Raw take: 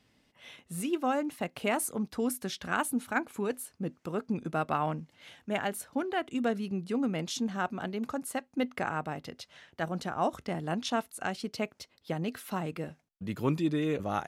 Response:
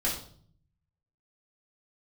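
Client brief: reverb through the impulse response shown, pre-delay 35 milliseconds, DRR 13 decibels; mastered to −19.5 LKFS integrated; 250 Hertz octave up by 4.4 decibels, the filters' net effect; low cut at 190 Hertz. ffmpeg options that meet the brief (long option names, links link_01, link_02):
-filter_complex "[0:a]highpass=190,equalizer=frequency=250:width_type=o:gain=7,asplit=2[link_01][link_02];[1:a]atrim=start_sample=2205,adelay=35[link_03];[link_02][link_03]afir=irnorm=-1:irlink=0,volume=-20.5dB[link_04];[link_01][link_04]amix=inputs=2:normalize=0,volume=11dB"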